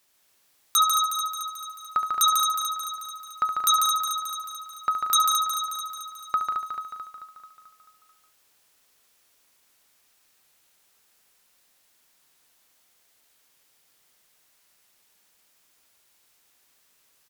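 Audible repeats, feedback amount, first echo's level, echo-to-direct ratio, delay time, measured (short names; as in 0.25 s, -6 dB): 25, no steady repeat, -9.5 dB, 0.5 dB, 70 ms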